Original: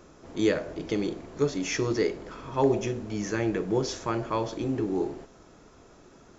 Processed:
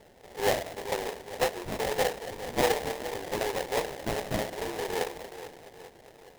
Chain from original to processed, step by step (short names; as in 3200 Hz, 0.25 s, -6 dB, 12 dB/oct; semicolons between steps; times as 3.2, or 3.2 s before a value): mistuned SSB +77 Hz 370–3100 Hz; split-band echo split 870 Hz, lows 0.418 s, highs 0.281 s, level -12 dB; sample-rate reducer 1300 Hz, jitter 20%